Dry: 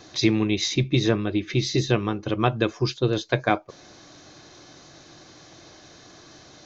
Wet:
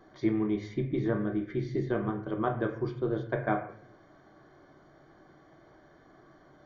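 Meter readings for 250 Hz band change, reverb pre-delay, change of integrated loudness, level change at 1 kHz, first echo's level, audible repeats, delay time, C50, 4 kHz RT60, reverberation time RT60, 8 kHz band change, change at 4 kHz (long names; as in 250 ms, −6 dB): −6.0 dB, 3 ms, −7.5 dB, −7.0 dB, no echo audible, no echo audible, no echo audible, 8.5 dB, 0.50 s, 0.50 s, can't be measured, −26.0 dB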